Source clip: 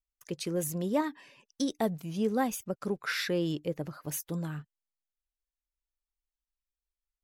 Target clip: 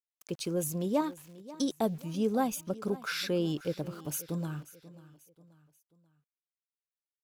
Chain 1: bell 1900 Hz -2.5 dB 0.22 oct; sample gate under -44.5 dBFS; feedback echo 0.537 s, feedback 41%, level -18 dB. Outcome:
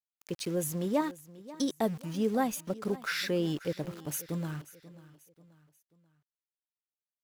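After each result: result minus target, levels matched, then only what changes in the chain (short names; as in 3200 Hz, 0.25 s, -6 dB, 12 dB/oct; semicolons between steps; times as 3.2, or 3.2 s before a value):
sample gate: distortion +8 dB; 2000 Hz band +2.5 dB
change: sample gate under -52 dBFS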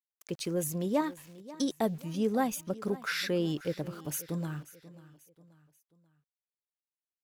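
2000 Hz band +2.5 dB
change: bell 1900 Hz -14 dB 0.22 oct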